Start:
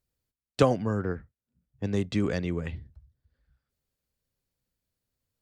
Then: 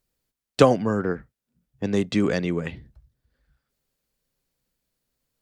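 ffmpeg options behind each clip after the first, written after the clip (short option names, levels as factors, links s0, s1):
-af "equalizer=f=83:t=o:w=0.76:g=-13.5,volume=2.11"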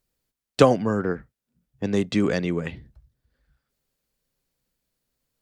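-af anull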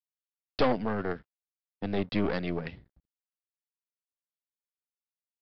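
-af "aeval=exprs='(tanh(8.91*val(0)+0.8)-tanh(0.8))/8.91':c=same,aresample=11025,aeval=exprs='sgn(val(0))*max(abs(val(0))-0.00168,0)':c=same,aresample=44100,volume=0.891"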